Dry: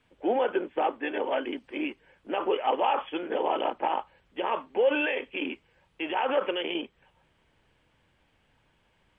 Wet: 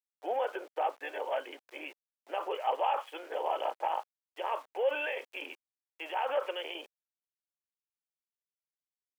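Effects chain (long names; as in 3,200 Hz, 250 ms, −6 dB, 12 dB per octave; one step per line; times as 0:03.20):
centre clipping without the shift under −46 dBFS
four-pole ladder high-pass 460 Hz, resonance 30%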